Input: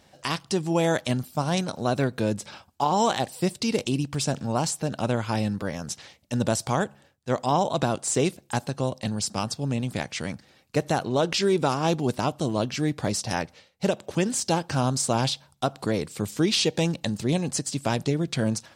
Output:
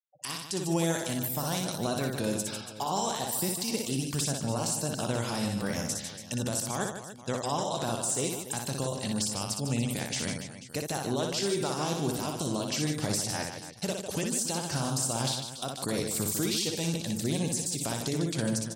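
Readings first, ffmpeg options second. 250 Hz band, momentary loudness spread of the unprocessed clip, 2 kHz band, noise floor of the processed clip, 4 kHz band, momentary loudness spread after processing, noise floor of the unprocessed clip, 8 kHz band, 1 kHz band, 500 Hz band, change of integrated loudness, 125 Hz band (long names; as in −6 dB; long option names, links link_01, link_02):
−5.0 dB, 8 LU, −5.0 dB, −44 dBFS, −3.0 dB, 6 LU, −60 dBFS, +1.0 dB, −7.5 dB, −6.5 dB, −4.5 dB, −5.5 dB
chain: -af "aemphasis=mode=production:type=75fm,agate=range=-33dB:threshold=-46dB:ratio=3:detection=peak,afftfilt=real='re*gte(hypot(re,im),0.00794)':imag='im*gte(hypot(re,im),0.00794)':win_size=1024:overlap=0.75,adynamicequalizer=threshold=0.00355:dfrequency=2500:dqfactor=5.8:tfrequency=2500:tqfactor=5.8:attack=5:release=100:ratio=0.375:range=2:mode=cutabove:tftype=bell,acompressor=threshold=-24dB:ratio=6,alimiter=limit=-19.5dB:level=0:latency=1:release=58,acontrast=61,aecho=1:1:60|150|285|487.5|791.2:0.631|0.398|0.251|0.158|0.1,volume=-8dB"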